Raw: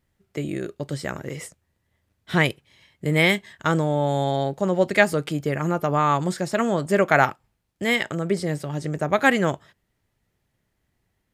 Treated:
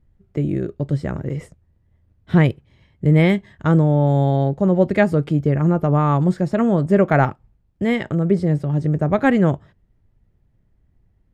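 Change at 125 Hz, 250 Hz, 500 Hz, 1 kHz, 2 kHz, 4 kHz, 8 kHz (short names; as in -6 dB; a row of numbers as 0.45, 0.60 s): +10.0 dB, +8.0 dB, +3.0 dB, -0.5 dB, -4.5 dB, -8.0 dB, under -10 dB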